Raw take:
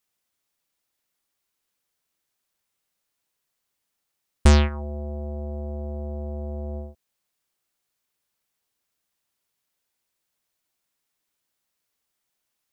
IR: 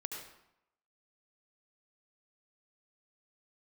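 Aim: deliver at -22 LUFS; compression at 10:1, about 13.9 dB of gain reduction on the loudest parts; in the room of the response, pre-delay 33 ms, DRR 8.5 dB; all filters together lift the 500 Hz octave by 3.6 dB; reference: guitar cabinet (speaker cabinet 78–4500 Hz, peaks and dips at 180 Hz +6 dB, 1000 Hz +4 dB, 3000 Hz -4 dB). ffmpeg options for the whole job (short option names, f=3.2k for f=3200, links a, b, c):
-filter_complex "[0:a]equalizer=f=500:t=o:g=4.5,acompressor=threshold=-25dB:ratio=10,asplit=2[a][b];[1:a]atrim=start_sample=2205,adelay=33[c];[b][c]afir=irnorm=-1:irlink=0,volume=-8dB[d];[a][d]amix=inputs=2:normalize=0,highpass=78,equalizer=f=180:t=q:w=4:g=6,equalizer=f=1k:t=q:w=4:g=4,equalizer=f=3k:t=q:w=4:g=-4,lowpass=f=4.5k:w=0.5412,lowpass=f=4.5k:w=1.3066,volume=12dB"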